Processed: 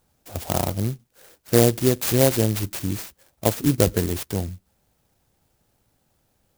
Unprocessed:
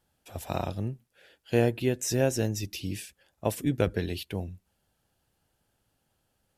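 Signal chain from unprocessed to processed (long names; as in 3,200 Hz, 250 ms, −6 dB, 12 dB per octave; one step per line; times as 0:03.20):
converter with an unsteady clock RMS 0.13 ms
level +7.5 dB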